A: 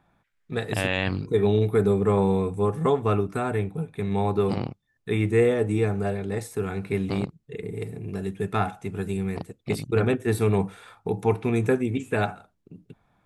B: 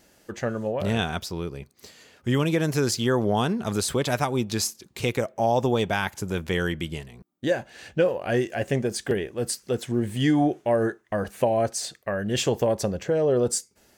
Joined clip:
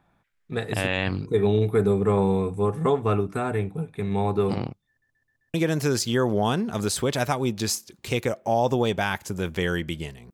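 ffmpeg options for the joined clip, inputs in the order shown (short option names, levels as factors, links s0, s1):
-filter_complex "[0:a]apad=whole_dur=10.33,atrim=end=10.33,asplit=5[s0][s1][s2][s3][s4];[s0]atrim=end=5.022[s5];[s1]atrim=start=4.888:end=5.022[s6];[s2]atrim=start=4.888:end=5.022[s7];[s3]atrim=start=4.888:end=5.022[s8];[s4]atrim=start=4.888:end=5.022[s9];[1:a]atrim=start=2.458:end=7.25[s10];[s5][s6]acrossfade=d=0.004:c1=hsin:c2=hsin[s11];[s11][s7]acrossfade=d=0.004:c1=hsin:c2=hsin[s12];[s12][s8]acrossfade=d=0.004:c1=hsin:c2=hsin[s13];[s13][s9]acrossfade=d=0.004:c1=hsin:c2=hsin[s14];[s14][s10]acrossfade=d=0.004:c1=hsin:c2=hsin"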